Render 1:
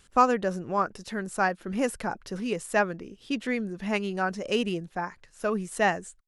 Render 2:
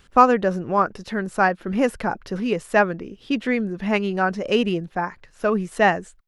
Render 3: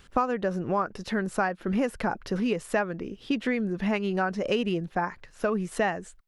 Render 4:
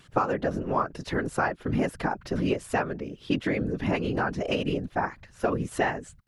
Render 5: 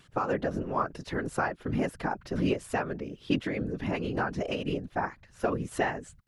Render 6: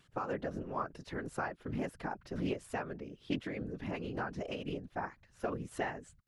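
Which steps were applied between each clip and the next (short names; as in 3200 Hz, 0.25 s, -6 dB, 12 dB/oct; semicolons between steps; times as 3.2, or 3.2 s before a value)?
bell 8800 Hz -11.5 dB 1.4 oct; gain +7 dB
compressor 5:1, threshold -23 dBFS, peak gain reduction 14 dB
whisperiser
noise-modulated level, depth 55%
Doppler distortion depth 0.17 ms; gain -8 dB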